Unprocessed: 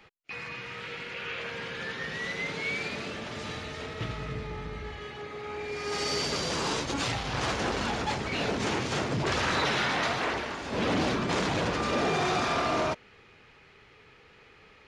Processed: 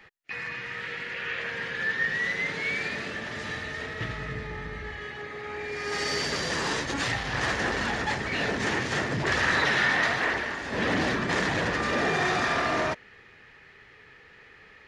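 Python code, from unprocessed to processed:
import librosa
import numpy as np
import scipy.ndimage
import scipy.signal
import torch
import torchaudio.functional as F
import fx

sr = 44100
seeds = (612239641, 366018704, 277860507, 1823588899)

y = fx.peak_eq(x, sr, hz=1800.0, db=12.5, octaves=0.28)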